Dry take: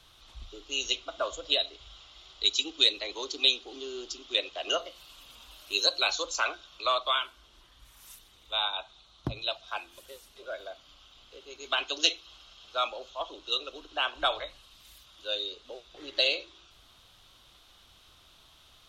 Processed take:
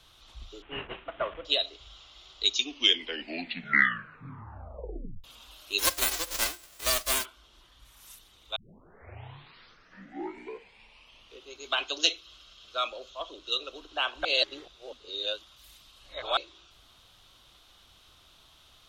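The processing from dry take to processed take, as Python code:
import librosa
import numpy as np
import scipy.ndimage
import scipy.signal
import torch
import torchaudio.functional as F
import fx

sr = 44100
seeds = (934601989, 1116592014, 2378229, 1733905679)

y = fx.cvsd(x, sr, bps=16000, at=(0.62, 1.45))
y = fx.envelope_flatten(y, sr, power=0.1, at=(5.78, 7.24), fade=0.02)
y = fx.peak_eq(y, sr, hz=840.0, db=-10.0, octaves=0.36, at=(12.11, 13.63))
y = fx.edit(y, sr, fx.tape_stop(start_s=2.45, length_s=2.79),
    fx.tape_start(start_s=8.56, length_s=2.98),
    fx.reverse_span(start_s=14.25, length_s=2.12), tone=tone)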